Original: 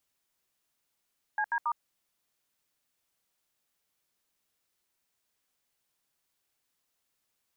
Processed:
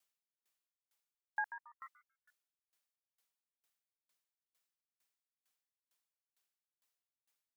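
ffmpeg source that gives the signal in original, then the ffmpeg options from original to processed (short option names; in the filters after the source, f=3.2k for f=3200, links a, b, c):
-f lavfi -i "aevalsrc='0.0355*clip(min(mod(t,0.138),0.063-mod(t,0.138))/0.002,0,1)*(eq(floor(t/0.138),0)*(sin(2*PI*852*mod(t,0.138))+sin(2*PI*1633*mod(t,0.138)))+eq(floor(t/0.138),1)*(sin(2*PI*941*mod(t,0.138))+sin(2*PI*1633*mod(t,0.138)))+eq(floor(t/0.138),2)*(sin(2*PI*941*mod(t,0.138))+sin(2*PI*1209*mod(t,0.138))))':d=0.414:s=44100"
-filter_complex "[0:a]lowshelf=f=460:g=-11.5,asplit=5[a][b][c][d][e];[b]adelay=146,afreqshift=130,volume=-17dB[f];[c]adelay=292,afreqshift=260,volume=-23.9dB[g];[d]adelay=438,afreqshift=390,volume=-30.9dB[h];[e]adelay=584,afreqshift=520,volume=-37.8dB[i];[a][f][g][h][i]amix=inputs=5:normalize=0,aeval=exprs='val(0)*pow(10,-37*if(lt(mod(2.2*n/s,1),2*abs(2.2)/1000),1-mod(2.2*n/s,1)/(2*abs(2.2)/1000),(mod(2.2*n/s,1)-2*abs(2.2)/1000)/(1-2*abs(2.2)/1000))/20)':c=same"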